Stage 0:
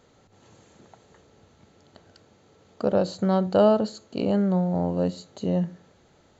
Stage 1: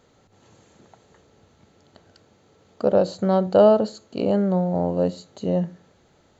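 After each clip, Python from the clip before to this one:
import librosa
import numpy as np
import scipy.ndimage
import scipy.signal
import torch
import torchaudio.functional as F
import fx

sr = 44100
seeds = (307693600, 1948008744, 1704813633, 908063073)

y = fx.dynamic_eq(x, sr, hz=550.0, q=1.0, threshold_db=-32.0, ratio=4.0, max_db=5)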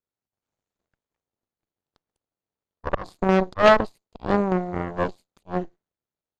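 y = fx.auto_swell(x, sr, attack_ms=139.0)
y = fx.cheby_harmonics(y, sr, harmonics=(4, 7), levels_db=(-8, -17), full_scale_db=-6.0)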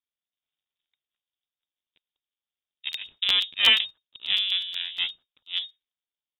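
y = fx.freq_invert(x, sr, carrier_hz=3700)
y = fx.buffer_crackle(y, sr, first_s=0.76, period_s=0.12, block=512, kind='repeat')
y = F.gain(torch.from_numpy(y), -4.0).numpy()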